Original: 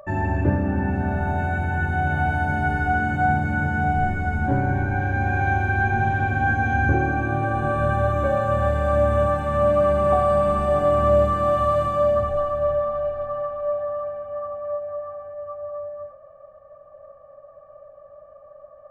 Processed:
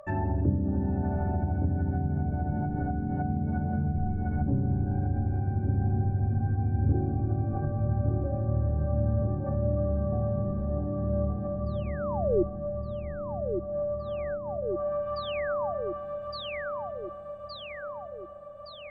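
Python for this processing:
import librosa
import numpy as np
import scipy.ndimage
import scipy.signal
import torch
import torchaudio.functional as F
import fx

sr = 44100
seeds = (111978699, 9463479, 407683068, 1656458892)

y = fx.spec_paint(x, sr, seeds[0], shape='fall', start_s=11.66, length_s=0.77, low_hz=330.0, high_hz=4900.0, level_db=-14.0)
y = fx.echo_feedback(y, sr, ms=1166, feedback_pct=58, wet_db=-6.5)
y = fx.env_lowpass_down(y, sr, base_hz=330.0, full_db=-17.0)
y = F.gain(torch.from_numpy(y), -4.5).numpy()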